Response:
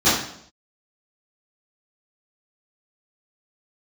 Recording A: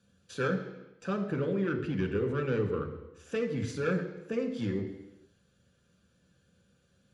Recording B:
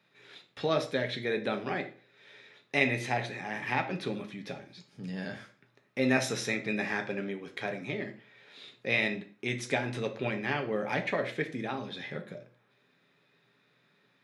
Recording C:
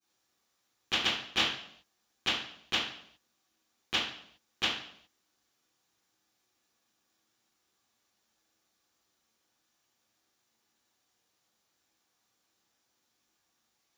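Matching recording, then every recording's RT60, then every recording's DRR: C; non-exponential decay, 0.40 s, 0.65 s; 3.0, 4.5, −16.0 decibels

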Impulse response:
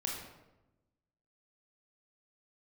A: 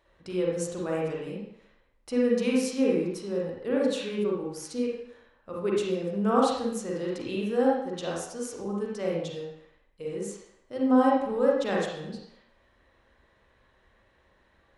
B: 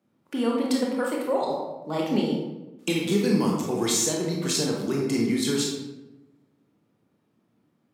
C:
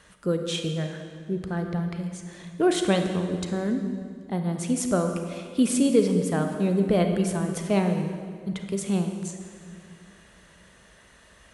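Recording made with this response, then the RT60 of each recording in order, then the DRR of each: B; 0.70, 1.0, 2.1 seconds; −3.5, −1.5, 5.0 decibels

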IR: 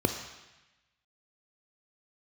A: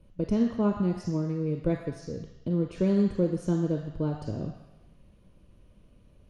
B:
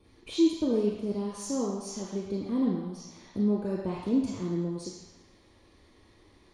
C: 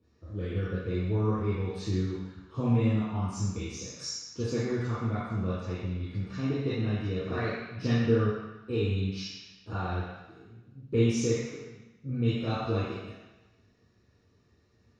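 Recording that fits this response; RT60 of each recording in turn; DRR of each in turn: A; 1.0, 1.0, 1.0 seconds; 6.0, −1.0, −8.5 decibels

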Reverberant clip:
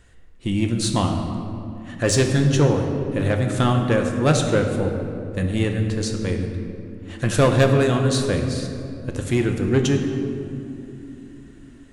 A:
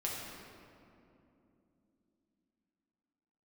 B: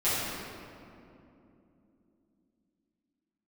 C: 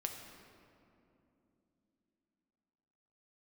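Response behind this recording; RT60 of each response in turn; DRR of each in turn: C; 2.9, 2.9, 3.0 seconds; −4.5, −14.0, 3.0 decibels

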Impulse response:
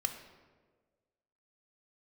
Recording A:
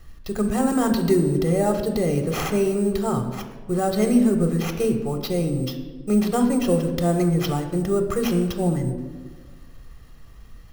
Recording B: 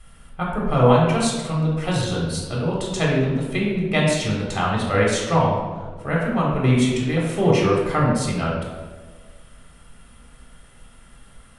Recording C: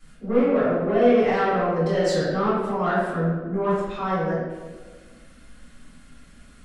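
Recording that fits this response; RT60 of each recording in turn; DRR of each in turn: A; 1.5, 1.5, 1.5 seconds; 6.0, −4.0, −12.0 decibels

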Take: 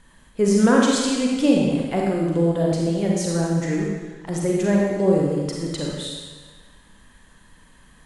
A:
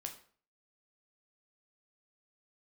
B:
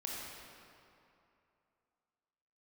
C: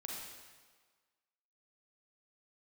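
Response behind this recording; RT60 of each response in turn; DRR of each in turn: C; 0.45, 2.8, 1.5 seconds; 3.0, −4.0, −2.5 decibels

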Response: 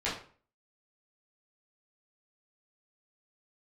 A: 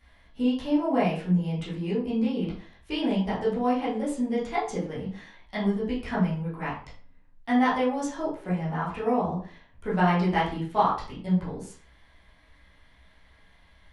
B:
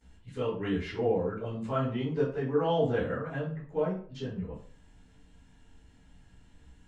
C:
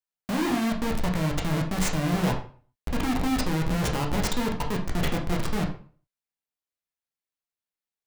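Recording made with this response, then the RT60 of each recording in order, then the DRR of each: A; 0.45, 0.45, 0.45 seconds; −9.5, −18.5, 0.0 decibels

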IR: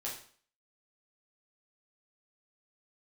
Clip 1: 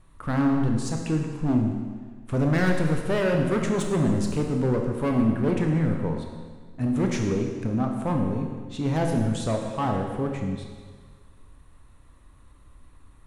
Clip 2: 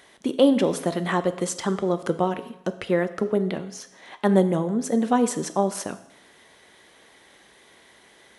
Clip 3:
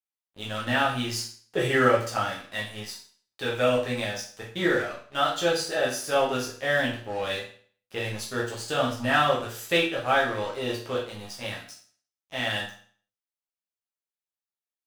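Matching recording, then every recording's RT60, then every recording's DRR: 3; 1.6, 0.80, 0.50 seconds; 2.0, 10.5, −5.5 decibels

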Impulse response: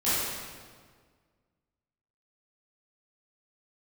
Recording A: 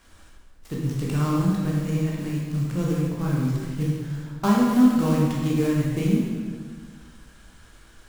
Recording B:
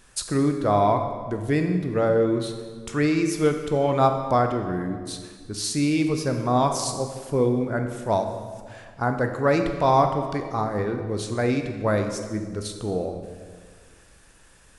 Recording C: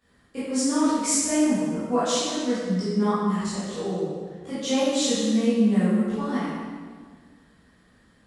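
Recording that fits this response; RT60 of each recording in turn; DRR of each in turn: C; 1.7, 1.7, 1.7 seconds; −4.5, 5.5, −14.0 decibels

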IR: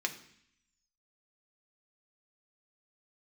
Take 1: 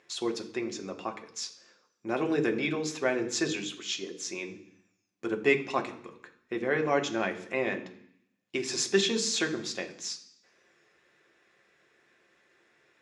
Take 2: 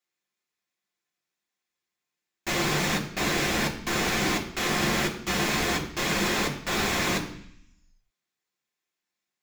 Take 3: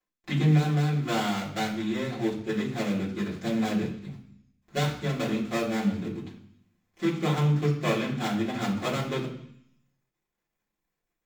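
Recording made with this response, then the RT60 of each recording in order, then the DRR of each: 1; 0.65, 0.65, 0.65 seconds; 3.5, −1.0, −8.0 decibels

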